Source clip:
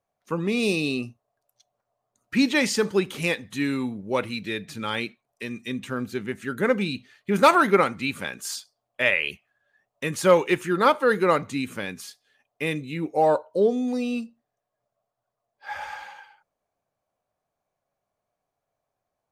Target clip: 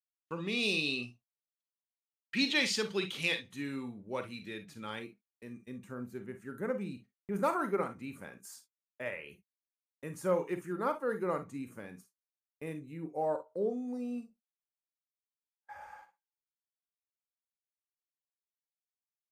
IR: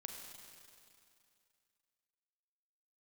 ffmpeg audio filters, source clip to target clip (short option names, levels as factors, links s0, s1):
-filter_complex "[0:a]asetnsamples=n=441:p=0,asendcmd='3.47 equalizer g -2.5;4.99 equalizer g -15',equalizer=f=3500:t=o:w=1.5:g=11.5,agate=range=0.00891:threshold=0.00891:ratio=16:detection=peak[s0];[1:a]atrim=start_sample=2205,atrim=end_sample=3087[s1];[s0][s1]afir=irnorm=-1:irlink=0,volume=0.447"